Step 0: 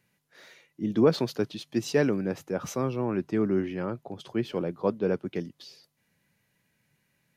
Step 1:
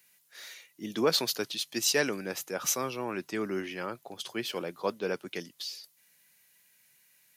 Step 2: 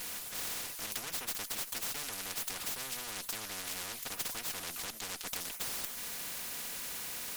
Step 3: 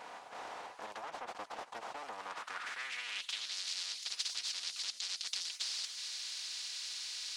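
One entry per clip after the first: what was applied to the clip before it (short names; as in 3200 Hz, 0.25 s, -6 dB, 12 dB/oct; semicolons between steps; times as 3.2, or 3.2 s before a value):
tilt +4.5 dB/oct
minimum comb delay 4.1 ms; compressor, threshold -39 dBFS, peak gain reduction 16 dB; spectral compressor 10:1; gain +6.5 dB
band-pass sweep 810 Hz -> 4500 Hz, 2.13–3.57; polynomial smoothing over 9 samples; Doppler distortion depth 0.25 ms; gain +8.5 dB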